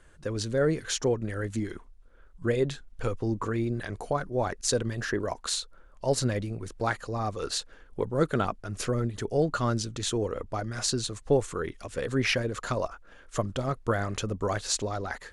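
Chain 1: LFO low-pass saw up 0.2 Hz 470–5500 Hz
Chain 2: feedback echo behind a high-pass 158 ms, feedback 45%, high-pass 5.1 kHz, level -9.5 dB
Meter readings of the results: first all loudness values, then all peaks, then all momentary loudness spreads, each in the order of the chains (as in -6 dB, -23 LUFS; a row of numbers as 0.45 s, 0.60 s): -28.5 LUFS, -30.0 LUFS; -7.0 dBFS, -8.0 dBFS; 9 LU, 8 LU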